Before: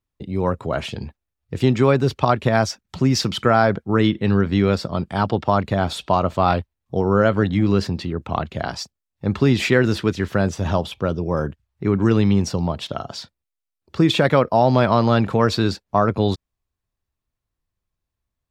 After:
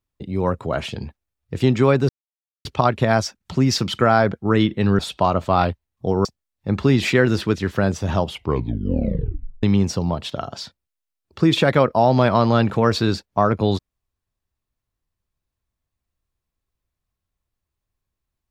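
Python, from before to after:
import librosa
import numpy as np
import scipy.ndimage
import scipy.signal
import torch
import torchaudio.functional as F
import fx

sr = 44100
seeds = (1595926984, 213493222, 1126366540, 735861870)

y = fx.edit(x, sr, fx.insert_silence(at_s=2.09, length_s=0.56),
    fx.cut(start_s=4.43, length_s=1.45),
    fx.cut(start_s=7.14, length_s=1.68),
    fx.tape_stop(start_s=10.8, length_s=1.4), tone=tone)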